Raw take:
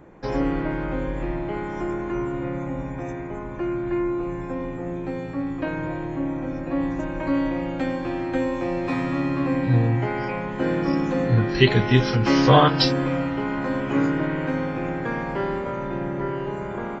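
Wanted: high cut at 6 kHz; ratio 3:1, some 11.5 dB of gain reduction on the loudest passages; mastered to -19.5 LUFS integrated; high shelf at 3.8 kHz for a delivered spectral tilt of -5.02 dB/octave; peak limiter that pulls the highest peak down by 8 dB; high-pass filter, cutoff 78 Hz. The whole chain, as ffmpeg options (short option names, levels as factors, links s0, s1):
-af "highpass=78,lowpass=6000,highshelf=f=3800:g=-5,acompressor=threshold=0.0501:ratio=3,volume=3.55,alimiter=limit=0.335:level=0:latency=1"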